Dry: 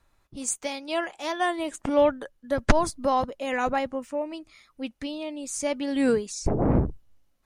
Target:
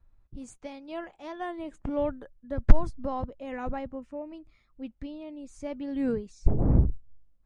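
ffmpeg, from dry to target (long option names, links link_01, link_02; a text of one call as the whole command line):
ffmpeg -i in.wav -af "aemphasis=mode=reproduction:type=riaa,volume=-11dB" out.wav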